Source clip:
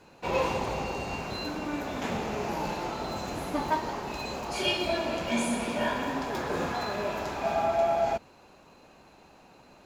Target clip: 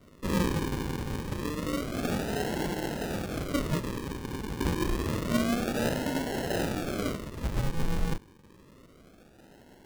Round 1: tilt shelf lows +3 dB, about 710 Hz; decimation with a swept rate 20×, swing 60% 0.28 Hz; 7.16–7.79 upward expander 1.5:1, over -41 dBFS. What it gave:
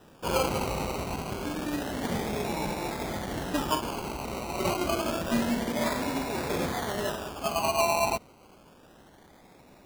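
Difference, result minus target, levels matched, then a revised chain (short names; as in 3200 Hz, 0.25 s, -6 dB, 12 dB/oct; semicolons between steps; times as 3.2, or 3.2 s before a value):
decimation with a swept rate: distortion -11 dB
tilt shelf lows +3 dB, about 710 Hz; decimation with a swept rate 52×, swing 60% 0.28 Hz; 7.16–7.79 upward expander 1.5:1, over -41 dBFS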